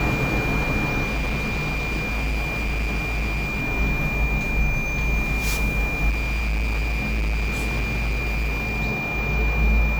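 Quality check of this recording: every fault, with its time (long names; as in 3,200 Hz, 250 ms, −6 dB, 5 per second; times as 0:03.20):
whistle 2,400 Hz −26 dBFS
0:01.04–0:03.62: clipping −21 dBFS
0:06.09–0:08.80: clipping −20.5 dBFS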